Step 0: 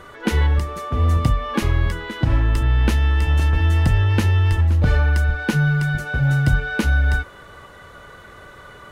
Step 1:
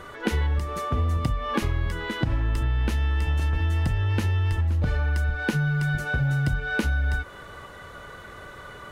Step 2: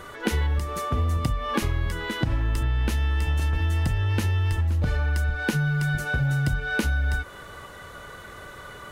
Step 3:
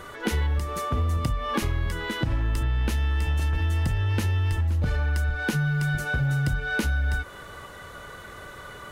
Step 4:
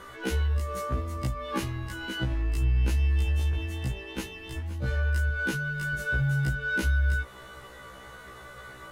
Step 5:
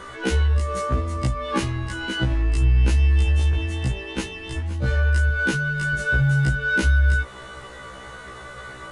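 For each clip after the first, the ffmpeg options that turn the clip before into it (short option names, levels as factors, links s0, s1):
-af "acompressor=threshold=0.0891:ratio=6"
-af "highshelf=f=5500:g=7"
-af "asoftclip=type=tanh:threshold=0.2"
-af "afftfilt=real='re*1.73*eq(mod(b,3),0)':imag='im*1.73*eq(mod(b,3),0)':win_size=2048:overlap=0.75,volume=0.841"
-af "aresample=22050,aresample=44100,volume=2.24"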